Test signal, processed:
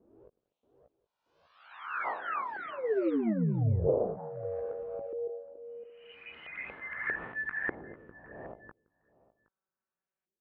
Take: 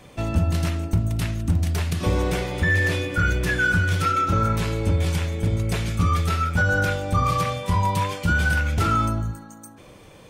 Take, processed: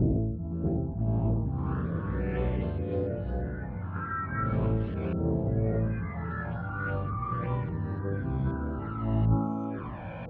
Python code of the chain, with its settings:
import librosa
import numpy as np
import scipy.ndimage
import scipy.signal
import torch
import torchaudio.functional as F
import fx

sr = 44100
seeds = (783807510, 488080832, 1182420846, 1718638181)

y = fx.spec_swells(x, sr, rise_s=1.58)
y = fx.highpass(y, sr, hz=69.0, slope=6)
y = fx.peak_eq(y, sr, hz=2000.0, db=-10.0, octaves=0.31)
y = fx.over_compress(y, sr, threshold_db=-31.0, ratio=-1.0)
y = fx.doubler(y, sr, ms=18.0, db=-7.5)
y = fx.env_flanger(y, sr, rest_ms=5.3, full_db=-24.5)
y = fx.filter_lfo_lowpass(y, sr, shape='saw_up', hz=0.39, low_hz=370.0, high_hz=2200.0, q=2.4)
y = y + 10.0 ** (-22.0 / 20.0) * np.pad(y, (int(768 * sr / 1000.0), 0))[:len(y)]
y = fx.echo_pitch(y, sr, ms=630, semitones=3, count=3, db_per_echo=-6.0)
y = fx.spacing_loss(y, sr, db_at_10k=32)